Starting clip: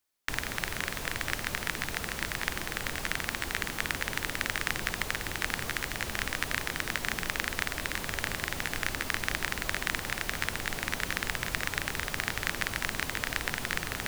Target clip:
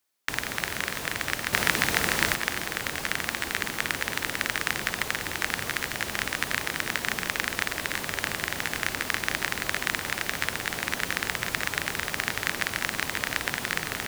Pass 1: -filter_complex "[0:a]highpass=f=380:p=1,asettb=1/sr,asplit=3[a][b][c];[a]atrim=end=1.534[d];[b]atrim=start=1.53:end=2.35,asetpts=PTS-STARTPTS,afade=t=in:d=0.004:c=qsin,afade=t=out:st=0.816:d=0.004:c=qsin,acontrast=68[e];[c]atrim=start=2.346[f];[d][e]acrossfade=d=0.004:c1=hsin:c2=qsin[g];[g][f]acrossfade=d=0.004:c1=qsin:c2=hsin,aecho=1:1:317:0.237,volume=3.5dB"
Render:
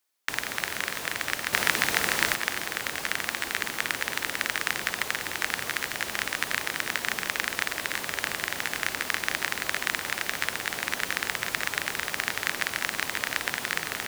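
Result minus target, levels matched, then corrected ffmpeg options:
125 Hz band -6.5 dB
-filter_complex "[0:a]highpass=f=130:p=1,asettb=1/sr,asplit=3[a][b][c];[a]atrim=end=1.534[d];[b]atrim=start=1.53:end=2.35,asetpts=PTS-STARTPTS,afade=t=in:d=0.004:c=qsin,afade=t=out:st=0.816:d=0.004:c=qsin,acontrast=68[e];[c]atrim=start=2.346[f];[d][e]acrossfade=d=0.004:c1=hsin:c2=qsin[g];[g][f]acrossfade=d=0.004:c1=qsin:c2=hsin,aecho=1:1:317:0.237,volume=3.5dB"

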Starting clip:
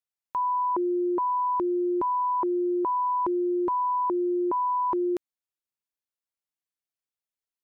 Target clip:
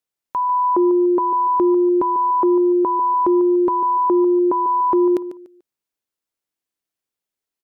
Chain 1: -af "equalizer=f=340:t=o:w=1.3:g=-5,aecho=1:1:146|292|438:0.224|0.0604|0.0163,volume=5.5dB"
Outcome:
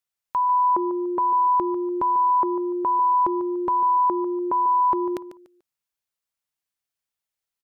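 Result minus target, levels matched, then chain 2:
250 Hz band -6.0 dB
-af "equalizer=f=340:t=o:w=1.3:g=5.5,aecho=1:1:146|292|438:0.224|0.0604|0.0163,volume=5.5dB"

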